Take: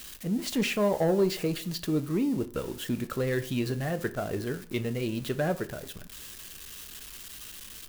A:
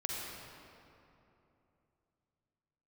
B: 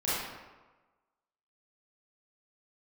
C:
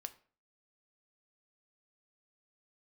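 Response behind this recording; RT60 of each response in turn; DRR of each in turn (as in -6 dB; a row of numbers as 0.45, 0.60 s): C; 3.0, 1.2, 0.45 s; -3.0, -11.5, 9.0 dB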